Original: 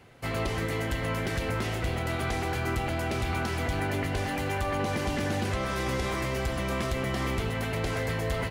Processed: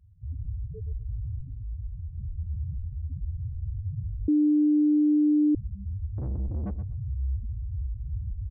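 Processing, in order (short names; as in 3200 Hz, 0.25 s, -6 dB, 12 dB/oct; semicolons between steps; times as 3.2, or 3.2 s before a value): octaver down 1 oct, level +3 dB; bell 74 Hz +5 dB 2.1 oct; limiter -19.5 dBFS, peak gain reduction 6.5 dB; loudest bins only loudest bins 2; 1.41–2.18 resonator 53 Hz, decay 0.47 s, harmonics all, mix 50%; 6.18–6.71 overdrive pedal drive 36 dB, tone 3200 Hz, clips at -23 dBFS; feedback echo 0.123 s, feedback 17%, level -12 dB; 4.28–5.55 bleep 299 Hz -16.5 dBFS; gain -1.5 dB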